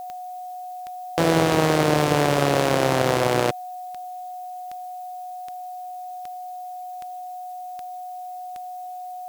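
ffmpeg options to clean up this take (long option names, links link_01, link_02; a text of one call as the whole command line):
ffmpeg -i in.wav -af "adeclick=threshold=4,bandreject=frequency=730:width=30,agate=range=-21dB:threshold=-27dB" out.wav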